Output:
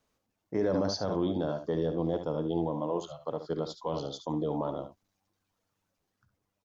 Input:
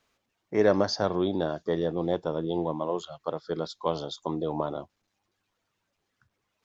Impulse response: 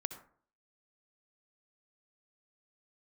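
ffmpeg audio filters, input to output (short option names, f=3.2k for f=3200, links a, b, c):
-filter_complex "[0:a]acrossover=split=900[a][b];[b]dynaudnorm=f=170:g=9:m=3dB[c];[a][c]amix=inputs=2:normalize=0,aecho=1:1:60|70:0.133|0.299,alimiter=limit=-17.5dB:level=0:latency=1:release=15,equalizer=f=2.5k:w=0.45:g=-9.5,bandreject=f=390:w=12,asetrate=42845,aresample=44100,atempo=1.0293"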